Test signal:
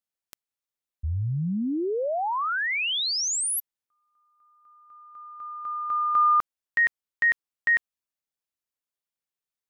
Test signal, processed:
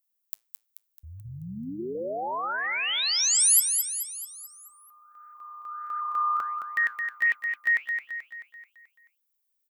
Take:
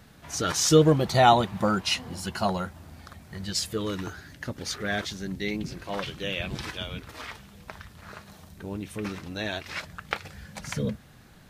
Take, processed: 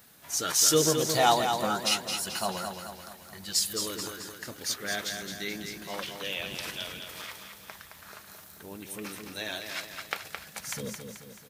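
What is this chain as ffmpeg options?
ffmpeg -i in.wav -af "flanger=delay=1.7:depth=8.9:regen=-85:speed=1.5:shape=triangular,aemphasis=mode=production:type=bsi,aecho=1:1:217|434|651|868|1085|1302:0.473|0.241|0.123|0.0628|0.032|0.0163" out.wav

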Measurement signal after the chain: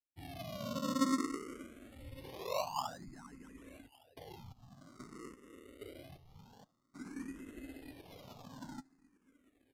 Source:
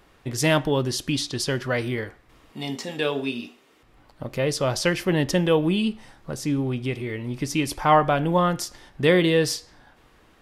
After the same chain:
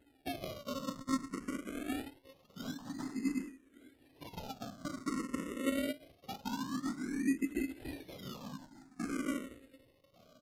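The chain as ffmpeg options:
ffmpeg -i in.wav -filter_complex "[0:a]aeval=exprs='if(lt(val(0),0),0.251*val(0),val(0))':channel_layout=same,highshelf=frequency=2800:gain=-10,bandreject=frequency=187.8:width_type=h:width=4,bandreject=frequency=375.6:width_type=h:width=4,bandreject=frequency=563.4:width_type=h:width=4,bandreject=frequency=751.2:width_type=h:width=4,bandreject=frequency=939:width_type=h:width=4,bandreject=frequency=1126.8:width_type=h:width=4,bandreject=frequency=1314.6:width_type=h:width=4,bandreject=frequency=1502.4:width_type=h:width=4,bandreject=frequency=1690.2:width_type=h:width=4,bandreject=frequency=1878:width_type=h:width=4,bandreject=frequency=2065.8:width_type=h:width=4,acompressor=threshold=-30dB:ratio=10,afftfilt=real='hypot(re,im)*cos(2*PI*random(0))':imag='hypot(re,im)*sin(2*PI*random(1))':win_size=512:overlap=0.75,asplit=3[link_01][link_02][link_03];[link_01]bandpass=frequency=270:width_type=q:width=8,volume=0dB[link_04];[link_02]bandpass=frequency=2290:width_type=q:width=8,volume=-6dB[link_05];[link_03]bandpass=frequency=3010:width_type=q:width=8,volume=-9dB[link_06];[link_04][link_05][link_06]amix=inputs=3:normalize=0,acrusher=samples=37:mix=1:aa=0.000001:lfo=1:lforange=37:lforate=0.23,asplit=2[link_07][link_08];[link_08]aecho=0:1:1162|2324:0.0841|0.0151[link_09];[link_07][link_09]amix=inputs=2:normalize=0,aresample=32000,aresample=44100,asplit=2[link_10][link_11];[link_11]afreqshift=0.52[link_12];[link_10][link_12]amix=inputs=2:normalize=1,volume=16.5dB" out.wav

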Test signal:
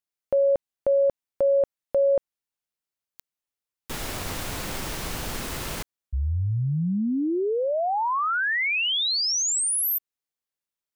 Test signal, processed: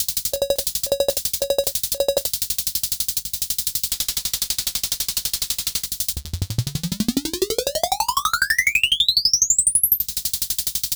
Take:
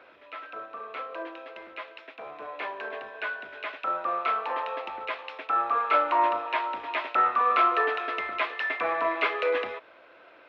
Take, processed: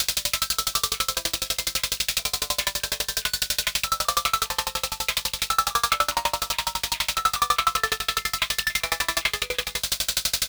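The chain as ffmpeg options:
ffmpeg -i in.wav -filter_complex "[0:a]aeval=exprs='val(0)+0.5*0.015*sgn(val(0))':channel_layout=same,equalizer=frequency=3300:width_type=o:width=1.9:gain=14.5,aexciter=amount=4.6:drive=6.4:freq=3900,highshelf=frequency=2600:gain=7.5,alimiter=limit=-14dB:level=0:latency=1:release=439,bandreject=frequency=50:width_type=h:width=6,bandreject=frequency=100:width_type=h:width=6,bandreject=frequency=150:width_type=h:width=6,bandreject=frequency=200:width_type=h:width=6,bandreject=frequency=250:width_type=h:width=6,bandreject=frequency=300:width_type=h:width=6,bandreject=frequency=350:width_type=h:width=6,aeval=exprs='val(0)+0.00891*(sin(2*PI*50*n/s)+sin(2*PI*2*50*n/s)/2+sin(2*PI*3*50*n/s)/3+sin(2*PI*4*50*n/s)/4+sin(2*PI*5*50*n/s)/5)':channel_layout=same,asplit=2[link_01][link_02];[link_02]aecho=0:1:34|78:0.596|0.251[link_03];[link_01][link_03]amix=inputs=2:normalize=0,aeval=exprs='val(0)*pow(10,-33*if(lt(mod(12*n/s,1),2*abs(12)/1000),1-mod(12*n/s,1)/(2*abs(12)/1000),(mod(12*n/s,1)-2*abs(12)/1000)/(1-2*abs(12)/1000))/20)':channel_layout=same,volume=6.5dB" out.wav

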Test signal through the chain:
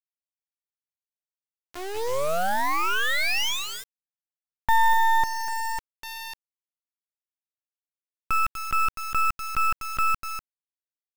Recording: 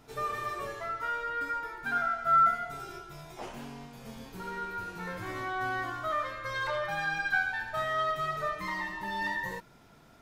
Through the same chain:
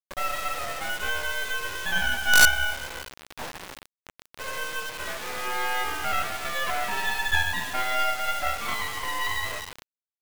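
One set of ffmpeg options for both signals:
ffmpeg -i in.wav -af "highpass=frequency=340:width_type=q:width=0.5412,highpass=frequency=340:width_type=q:width=1.307,lowpass=frequency=3200:width_type=q:width=0.5176,lowpass=frequency=3200:width_type=q:width=0.7071,lowpass=frequency=3200:width_type=q:width=1.932,afreqshift=130,aecho=1:1:246:0.282,acrusher=bits=4:dc=4:mix=0:aa=0.000001,volume=8.5dB" out.wav

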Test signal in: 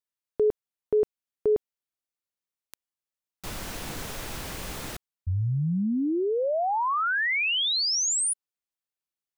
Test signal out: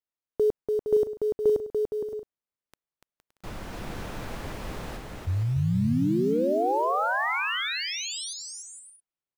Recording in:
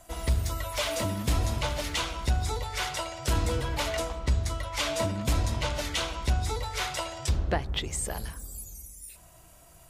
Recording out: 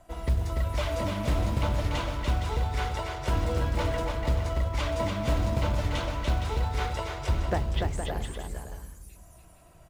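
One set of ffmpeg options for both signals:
ffmpeg -i in.wav -af "highshelf=frequency=2400:gain=-10,acrusher=bits=7:mode=log:mix=0:aa=0.000001,highshelf=frequency=6500:gain=-5.5,aecho=1:1:290|464|568.4|631|668.6:0.631|0.398|0.251|0.158|0.1" out.wav

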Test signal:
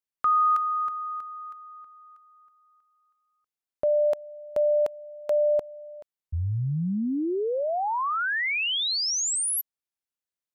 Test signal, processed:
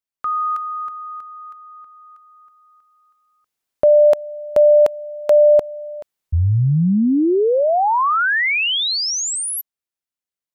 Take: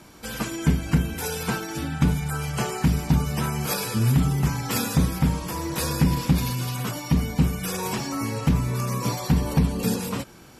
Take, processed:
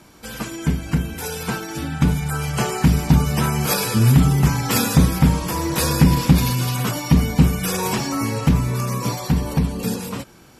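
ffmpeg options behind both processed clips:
ffmpeg -i in.wav -af "dynaudnorm=framelen=210:gausssize=21:maxgain=11.5dB" out.wav

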